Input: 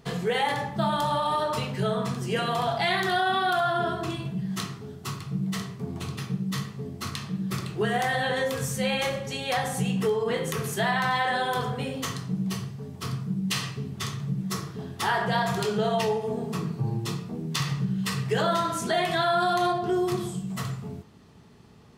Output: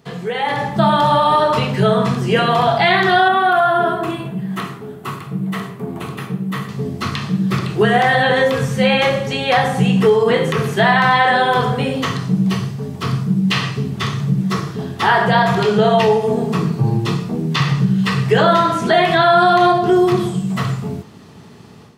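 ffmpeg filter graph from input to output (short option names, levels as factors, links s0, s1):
-filter_complex "[0:a]asettb=1/sr,asplit=3[s0][s1][s2];[s0]atrim=end=3.284[s3];[s1]atrim=start=3.28:end=6.69,asetpts=PTS-STARTPTS,afade=t=in:d=0.004:c=qsin,afade=t=out:st=3.406:d=0.004:c=qsin,highpass=f=300:p=1,equalizer=f=5300:t=o:w=1.4:g=-14[s4];[s2]atrim=start=6.686[s5];[s3][s4]acrossfade=d=0.004:c1=hsin:c2=qsin[s6];[s6][s5]acrossfade=d=0.004:c1=qsin:c2=hsin,acrossover=split=4000[s7][s8];[s8]acompressor=threshold=0.00224:ratio=4:attack=1:release=60[s9];[s7][s9]amix=inputs=2:normalize=0,highpass=94,dynaudnorm=f=370:g=3:m=3.55,volume=1.26"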